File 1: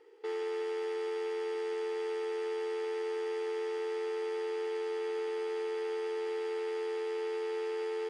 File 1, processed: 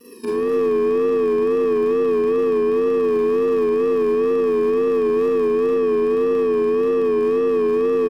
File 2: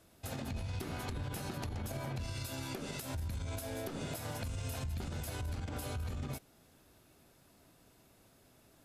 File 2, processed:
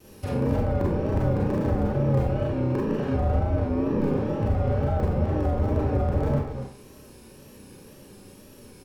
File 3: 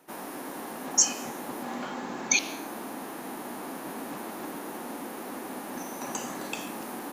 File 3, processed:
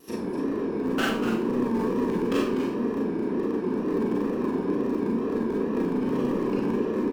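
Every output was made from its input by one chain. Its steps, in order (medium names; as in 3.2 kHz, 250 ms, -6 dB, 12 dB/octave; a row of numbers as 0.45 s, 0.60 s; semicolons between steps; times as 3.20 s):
bit-reversed sample order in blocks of 64 samples; low-pass that closes with the level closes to 1.2 kHz, closed at -37.5 dBFS; tone controls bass -5 dB, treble -3 dB; in parallel at -8 dB: word length cut 6-bit, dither none; on the sum: resonant low shelf 750 Hz +7 dB, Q 1.5; hard clipper -31.5 dBFS; on a send: delay 250 ms -9 dB; on the sum: Schroeder reverb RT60 0.43 s, combs from 30 ms, DRR -3.5 dB; wow and flutter 72 cents; peak normalisation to -12 dBFS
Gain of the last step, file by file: +12.0 dB, +10.5 dB, +6.5 dB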